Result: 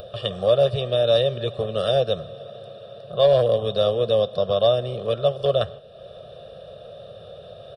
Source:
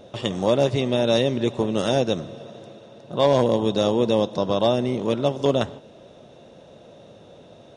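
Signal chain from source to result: comb 1.7 ms, depth 50%; upward compressor, threshold -32 dBFS; fixed phaser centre 1400 Hz, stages 8

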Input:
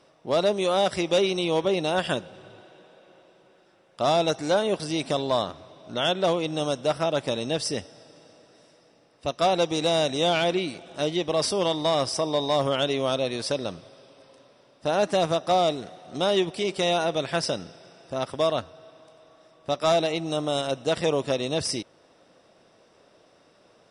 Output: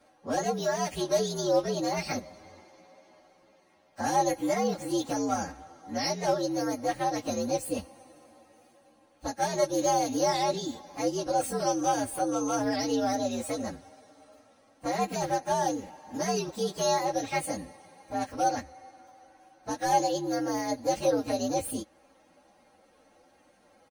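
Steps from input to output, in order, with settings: inharmonic rescaling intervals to 119%; high shelf 6500 Hz -6.5 dB; comb 3.7 ms, depth 67%; dynamic EQ 1100 Hz, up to -7 dB, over -37 dBFS, Q 1.1

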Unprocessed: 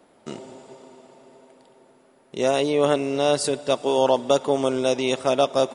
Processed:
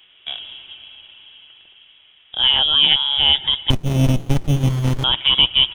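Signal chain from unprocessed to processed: inverted band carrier 3600 Hz; dynamic EQ 2400 Hz, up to -5 dB, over -36 dBFS, Q 5.5; 3.7–5.04 running maximum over 65 samples; gain +5.5 dB

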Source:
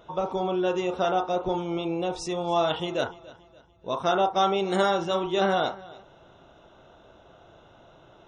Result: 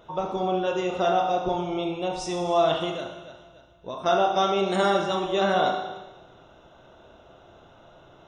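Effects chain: 2.9–4.06 compressor, threshold -32 dBFS, peak gain reduction 10 dB; Schroeder reverb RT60 1.1 s, combs from 25 ms, DRR 3.5 dB

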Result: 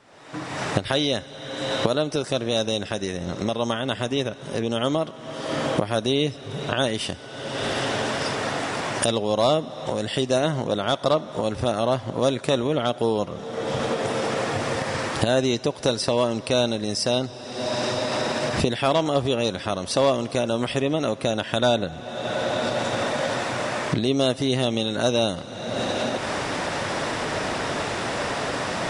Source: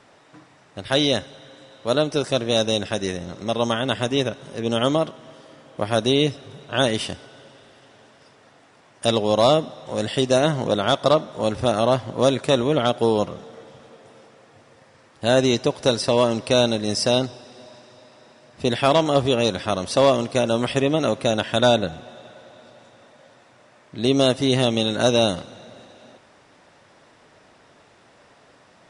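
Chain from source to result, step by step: recorder AGC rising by 48 dB/s; gain -3.5 dB

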